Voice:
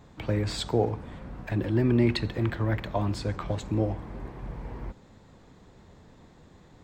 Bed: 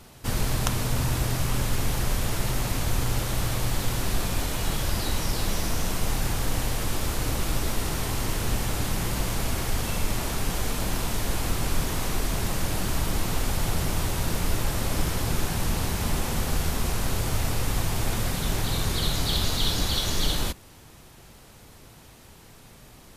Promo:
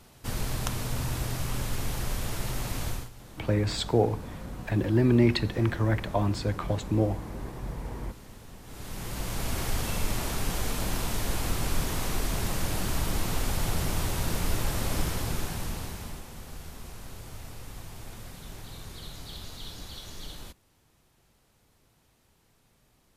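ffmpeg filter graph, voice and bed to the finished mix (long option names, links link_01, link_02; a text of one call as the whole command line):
ffmpeg -i stem1.wav -i stem2.wav -filter_complex "[0:a]adelay=3200,volume=1.5dB[link_01];[1:a]volume=14.5dB,afade=type=out:start_time=2.87:duration=0.23:silence=0.141254,afade=type=in:start_time=8.63:duration=1:silence=0.1,afade=type=out:start_time=14.95:duration=1.3:silence=0.199526[link_02];[link_01][link_02]amix=inputs=2:normalize=0" out.wav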